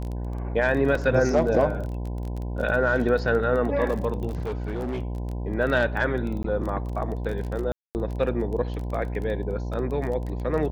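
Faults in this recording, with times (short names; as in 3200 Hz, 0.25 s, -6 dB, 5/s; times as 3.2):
buzz 60 Hz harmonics 17 -30 dBFS
crackle 22/s -30 dBFS
0.95 gap 3.2 ms
4.28–5.03 clipped -25.5 dBFS
6.43–6.44 gap 13 ms
7.72–7.95 gap 0.229 s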